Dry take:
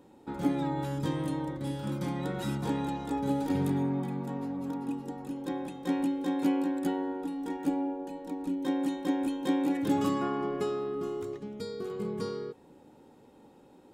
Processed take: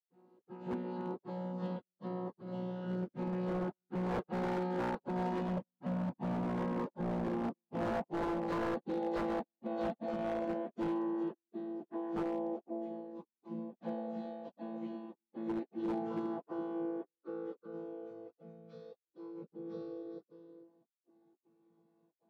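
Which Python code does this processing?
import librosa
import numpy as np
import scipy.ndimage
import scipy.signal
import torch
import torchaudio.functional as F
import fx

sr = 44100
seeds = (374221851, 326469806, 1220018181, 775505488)

p1 = fx.chord_vocoder(x, sr, chord='bare fifth', root=46)
p2 = fx.doppler_pass(p1, sr, speed_mps=14, closest_m=6.5, pass_at_s=4.57)
p3 = fx.over_compress(p2, sr, threshold_db=-41.0, ratio=-0.5)
p4 = p2 + (p3 * 10.0 ** (3.0 / 20.0))
p5 = fx.notch(p4, sr, hz=620.0, q=12.0)
p6 = p5 + 0.35 * np.pad(p5, (int(6.2 * sr / 1000.0), 0))[:len(p5)]
p7 = p6 + fx.echo_single(p6, sr, ms=253, db=-8.5, dry=0)
p8 = fx.step_gate(p7, sr, bpm=189, pattern='.xx.xxxxx.xxxx.', floor_db=-60.0, edge_ms=4.5)
p9 = fx.stretch_vocoder_free(p8, sr, factor=1.6)
p10 = fx.bandpass_edges(p9, sr, low_hz=230.0, high_hz=4400.0)
p11 = fx.low_shelf(p10, sr, hz=340.0, db=-4.5)
p12 = 10.0 ** (-39.5 / 20.0) * (np.abs((p11 / 10.0 ** (-39.5 / 20.0) + 3.0) % 4.0 - 2.0) - 1.0)
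p13 = fx.dynamic_eq(p12, sr, hz=560.0, q=1.5, threshold_db=-59.0, ratio=4.0, max_db=4)
y = p13 * 10.0 ** (8.5 / 20.0)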